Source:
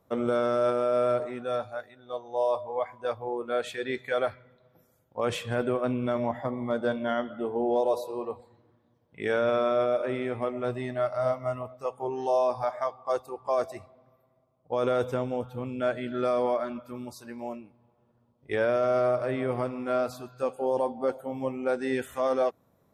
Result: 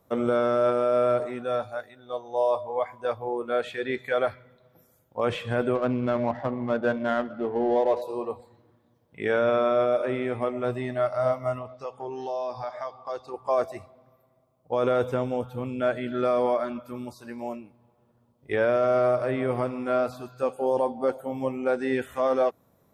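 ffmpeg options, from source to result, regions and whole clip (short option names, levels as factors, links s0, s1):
-filter_complex "[0:a]asettb=1/sr,asplit=3[s0][s1][s2];[s0]atrim=end=5.754[s3];[s1]atrim=start=5.75:end=8.02,asetpts=PTS-STARTPTS,afade=t=in:d=0.004:c=qsin,afade=t=out:st=2.266:d=0.004:c=qsin,equalizer=f=1600:w=5.5:g=4,adynamicsmooth=sensitivity=5:basefreq=1400[s4];[s2]atrim=start=8.016[s5];[s3][s4]acrossfade=d=0.004:c1=hsin:c2=qsin[s6];[s6][s5]acrossfade=d=0.004:c1=qsin:c2=hsin,asettb=1/sr,asplit=3[s7][s8][s9];[s7]atrim=end=11.584[s10];[s8]atrim=start=11.58:end=13.34,asetpts=PTS-STARTPTS,afade=t=in:d=0.004:c=qsin,afade=t=out:st=1.756:d=0.004:c=qsin,lowpass=f=4800:t=q:w=2.1,acompressor=threshold=0.0141:ratio=2:attack=3.2:release=140:knee=1:detection=peak[s11];[s9]atrim=start=13.336[s12];[s10][s11]acrossfade=d=0.004:c1=hsin:c2=qsin[s13];[s13][s12]acrossfade=d=0.004:c1=qsin:c2=hsin,acrossover=split=3600[s14][s15];[s15]acompressor=threshold=0.00112:ratio=4:attack=1:release=60[s16];[s14][s16]amix=inputs=2:normalize=0,highshelf=f=7300:g=5.5,volume=1.33"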